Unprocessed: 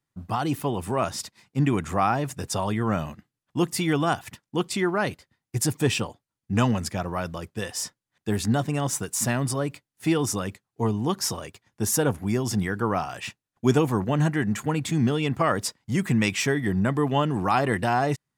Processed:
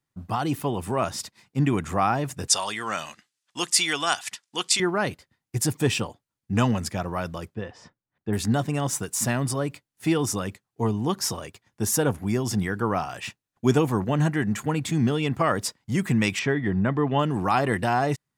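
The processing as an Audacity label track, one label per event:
2.480000	4.800000	frequency weighting ITU-R 468
7.550000	8.330000	tape spacing loss at 10 kHz 37 dB
16.390000	17.190000	low-pass 3.2 kHz

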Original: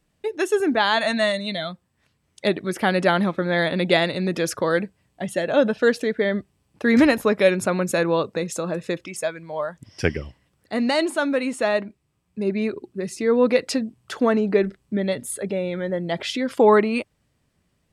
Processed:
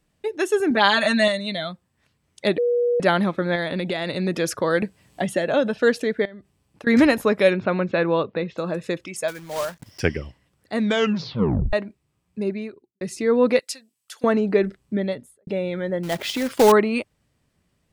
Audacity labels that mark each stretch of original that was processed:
0.700000	1.280000	comb 5.1 ms, depth 89%
2.580000	3.000000	bleep 482 Hz -17 dBFS
3.550000	4.090000	compression 12:1, threshold -21 dBFS
4.820000	5.750000	three bands compressed up and down depth 70%
6.250000	6.870000	compression 20:1, threshold -36 dBFS
7.530000	8.580000	steep low-pass 3.8 kHz
9.280000	10.010000	block-companded coder 3-bit
10.740000	10.740000	tape stop 0.99 s
12.420000	13.010000	fade out quadratic
13.590000	14.240000	differentiator
14.940000	15.470000	studio fade out
16.030000	16.720000	companded quantiser 4-bit

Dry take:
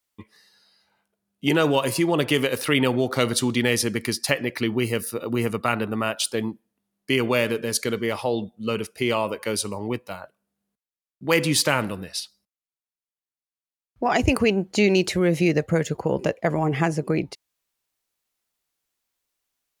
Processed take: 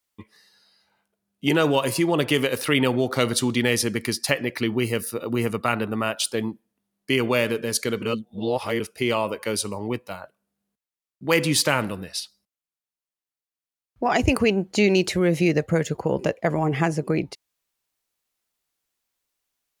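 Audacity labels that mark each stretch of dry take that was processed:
8.020000	8.800000	reverse

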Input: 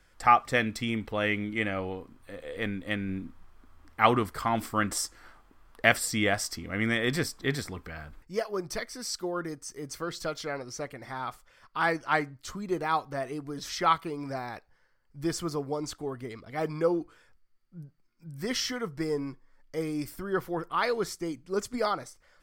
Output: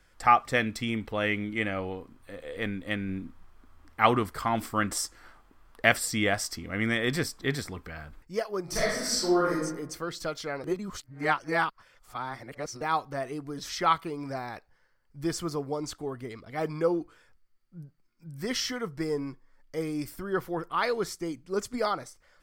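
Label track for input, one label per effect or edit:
8.630000	9.530000	reverb throw, RT60 0.94 s, DRR -7.5 dB
10.640000	12.810000	reverse

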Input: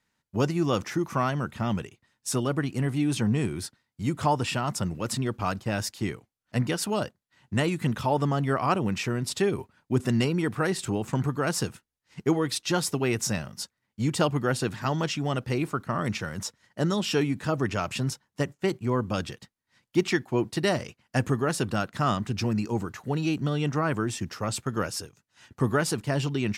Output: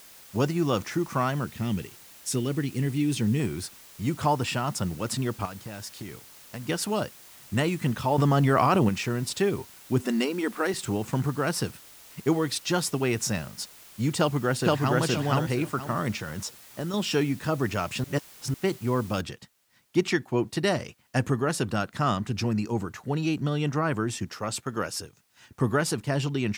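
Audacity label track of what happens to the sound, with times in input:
1.440000	3.400000	high-order bell 920 Hz -9.5 dB
5.450000	6.690000	compression, threshold -34 dBFS
8.180000	8.890000	level flattener amount 100%
10.030000	10.740000	brick-wall FIR high-pass 190 Hz
11.410000	12.260000	band-stop 6.9 kHz, Q 5.7
14.180000	14.990000	echo throw 470 ms, feedback 25%, level 0 dB
16.110000	16.940000	compression, threshold -28 dBFS
18.040000	18.540000	reverse
19.210000	19.210000	noise floor step -50 dB -70 dB
24.250000	24.980000	bass shelf 160 Hz -8 dB

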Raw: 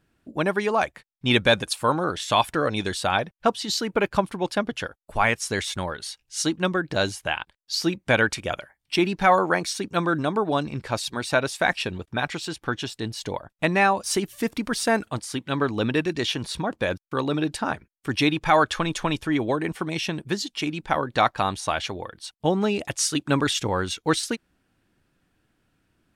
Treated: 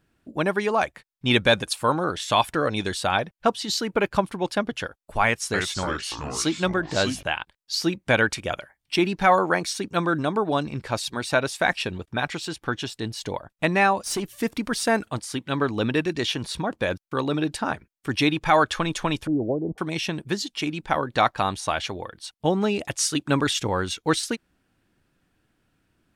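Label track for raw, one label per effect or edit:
5.250000	7.230000	ever faster or slower copies 288 ms, each echo -4 st, echoes 3, each echo -6 dB
13.990000	14.420000	valve stage drive 21 dB, bias 0.25
19.270000	19.780000	steep low-pass 700 Hz

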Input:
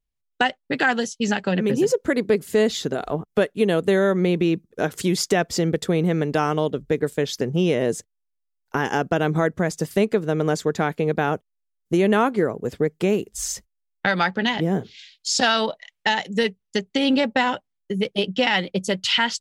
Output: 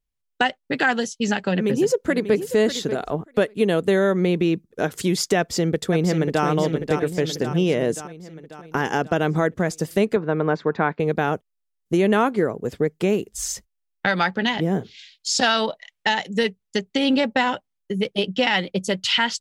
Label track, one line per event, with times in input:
1.500000	2.370000	echo throw 590 ms, feedback 10%, level -11.5 dB
5.380000	6.450000	echo throw 540 ms, feedback 60%, level -6.5 dB
10.160000	11.000000	cabinet simulation 120–3600 Hz, peaks and dips at 1 kHz +7 dB, 1.5 kHz +3 dB, 3.1 kHz -8 dB

